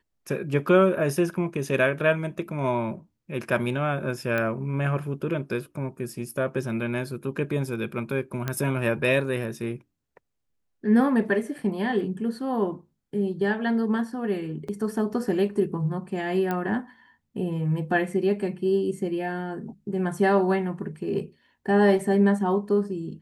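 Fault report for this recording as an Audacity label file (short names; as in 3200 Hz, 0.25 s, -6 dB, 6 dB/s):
4.380000	4.380000	pop -15 dBFS
8.480000	8.480000	pop -13 dBFS
14.680000	14.680000	gap 4.8 ms
16.510000	16.510000	pop -15 dBFS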